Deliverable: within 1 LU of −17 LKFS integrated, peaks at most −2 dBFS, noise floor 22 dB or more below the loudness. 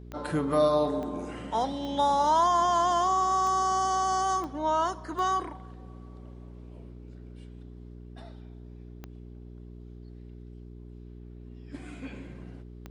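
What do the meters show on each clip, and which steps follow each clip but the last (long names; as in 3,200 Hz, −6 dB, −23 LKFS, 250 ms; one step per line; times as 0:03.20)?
number of clicks 8; mains hum 60 Hz; hum harmonics up to 420 Hz; level of the hum −43 dBFS; integrated loudness −26.5 LKFS; sample peak −14.5 dBFS; target loudness −17.0 LKFS
→ click removal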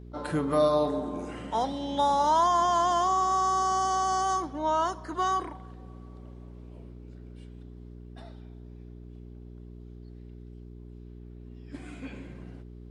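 number of clicks 0; mains hum 60 Hz; hum harmonics up to 420 Hz; level of the hum −43 dBFS
→ hum removal 60 Hz, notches 7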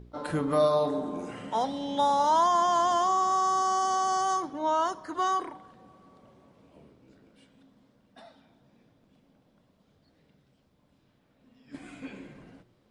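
mains hum none found; integrated loudness −26.5 LKFS; sample peak −14.5 dBFS; target loudness −17.0 LKFS
→ level +9.5 dB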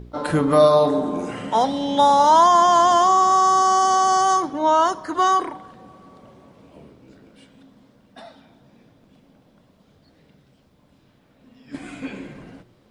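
integrated loudness −17.0 LKFS; sample peak −5.0 dBFS; background noise floor −58 dBFS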